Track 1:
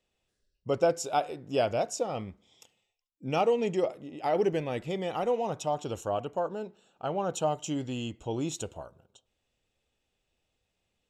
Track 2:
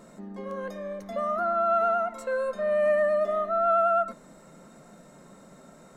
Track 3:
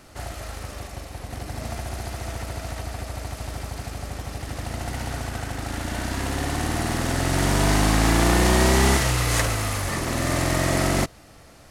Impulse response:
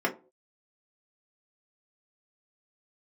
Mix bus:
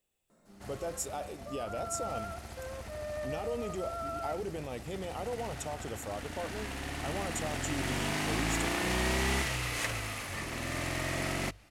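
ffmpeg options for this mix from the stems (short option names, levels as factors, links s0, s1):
-filter_complex "[0:a]alimiter=level_in=1.06:limit=0.0631:level=0:latency=1:release=27,volume=0.944,aexciter=amount=4.4:drive=5:freq=7600,volume=0.531[s0];[1:a]adelay=300,volume=0.158[s1];[2:a]bandreject=f=50:t=h:w=6,bandreject=f=100:t=h:w=6,adynamicequalizer=threshold=0.00708:dfrequency=2500:dqfactor=1.4:tfrequency=2500:tqfactor=1.4:attack=5:release=100:ratio=0.375:range=4:mode=boostabove:tftype=bell,adelay=450,volume=0.224[s2];[s0][s1][s2]amix=inputs=3:normalize=0,bandreject=f=58.5:t=h:w=4,bandreject=f=117:t=h:w=4,bandreject=f=175.5:t=h:w=4"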